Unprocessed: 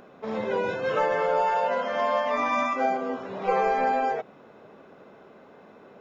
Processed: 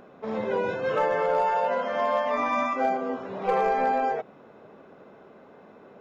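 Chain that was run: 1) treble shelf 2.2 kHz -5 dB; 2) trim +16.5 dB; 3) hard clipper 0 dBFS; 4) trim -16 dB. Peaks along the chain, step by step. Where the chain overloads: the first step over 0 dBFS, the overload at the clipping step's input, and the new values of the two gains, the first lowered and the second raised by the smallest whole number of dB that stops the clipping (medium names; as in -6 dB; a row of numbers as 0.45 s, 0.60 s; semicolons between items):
-13.0 dBFS, +3.5 dBFS, 0.0 dBFS, -16.0 dBFS; step 2, 3.5 dB; step 2 +12.5 dB, step 4 -12 dB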